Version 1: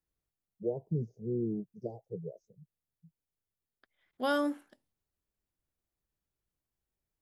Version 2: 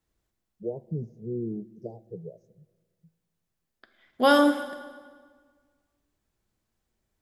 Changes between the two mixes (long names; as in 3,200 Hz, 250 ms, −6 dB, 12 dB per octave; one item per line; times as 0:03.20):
second voice +8.5 dB
reverb: on, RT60 1.6 s